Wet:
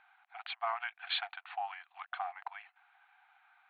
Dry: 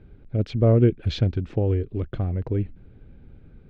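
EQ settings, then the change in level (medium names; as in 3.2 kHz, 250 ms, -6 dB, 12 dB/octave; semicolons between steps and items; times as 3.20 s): brick-wall FIR band-pass 700–4600 Hz; distance through air 340 m; +8.0 dB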